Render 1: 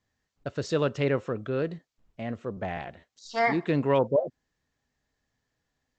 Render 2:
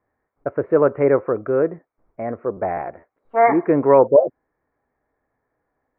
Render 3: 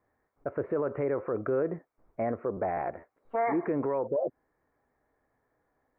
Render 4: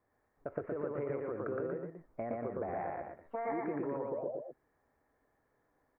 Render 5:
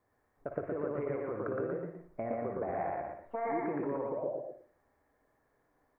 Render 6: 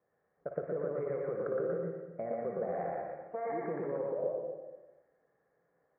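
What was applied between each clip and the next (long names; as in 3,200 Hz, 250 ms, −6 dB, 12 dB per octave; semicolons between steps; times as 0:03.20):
Chebyshev low-pass filter 2,300 Hz, order 6; flat-topped bell 630 Hz +10 dB 2.5 octaves; level +1.5 dB
downward compressor, threshold −16 dBFS, peak gain reduction 9 dB; brickwall limiter −20.5 dBFS, peak gain reduction 11.5 dB; level −1 dB
downward compressor, threshold −33 dBFS, peak gain reduction 8.5 dB; on a send: loudspeakers that aren't time-aligned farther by 40 metres −1 dB, 81 metres −7 dB; on the sum: level −3.5 dB
convolution reverb, pre-delay 51 ms, DRR 6.5 dB; level +1.5 dB
loudspeaker in its box 100–2,000 Hz, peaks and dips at 100 Hz −10 dB, 170 Hz +6 dB, 270 Hz −9 dB, 510 Hz +7 dB, 960 Hz −7 dB; dense smooth reverb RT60 1 s, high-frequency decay 0.9×, pre-delay 110 ms, DRR 6.5 dB; level −2.5 dB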